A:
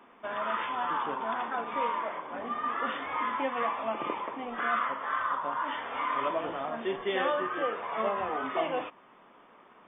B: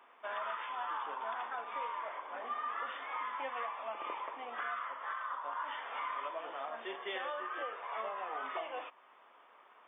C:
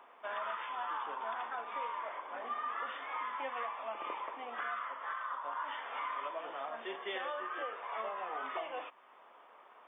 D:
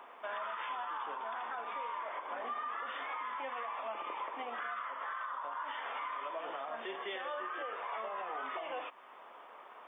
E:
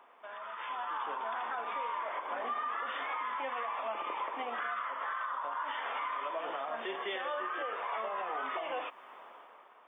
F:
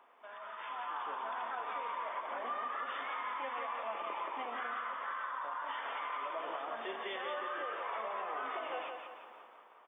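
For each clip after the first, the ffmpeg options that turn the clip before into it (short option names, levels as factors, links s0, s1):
-af "highpass=610,alimiter=level_in=1.33:limit=0.0631:level=0:latency=1:release=474,volume=0.75,volume=0.708"
-filter_complex "[0:a]lowshelf=f=130:g=9,acrossover=split=490|850[s0][s1][s2];[s1]acompressor=mode=upward:threshold=0.00158:ratio=2.5[s3];[s0][s3][s2]amix=inputs=3:normalize=0"
-af "alimiter=level_in=4.47:limit=0.0631:level=0:latency=1:release=131,volume=0.224,volume=1.88"
-af "dynaudnorm=f=190:g=7:m=3.35,volume=0.447"
-af "aecho=1:1:175|350|525|700|875:0.531|0.228|0.0982|0.0422|0.0181,volume=0.631"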